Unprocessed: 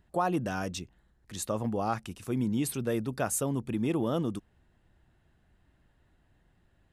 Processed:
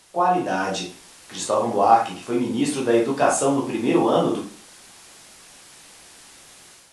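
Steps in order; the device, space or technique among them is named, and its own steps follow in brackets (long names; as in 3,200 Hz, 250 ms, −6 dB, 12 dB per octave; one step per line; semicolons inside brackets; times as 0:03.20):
filmed off a television (band-pass filter 270–6,900 Hz; parametric band 790 Hz +6 dB 0.56 octaves; convolution reverb RT60 0.45 s, pre-delay 10 ms, DRR −3.5 dB; white noise bed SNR 23 dB; automatic gain control gain up to 7.5 dB; AAC 64 kbit/s 24,000 Hz)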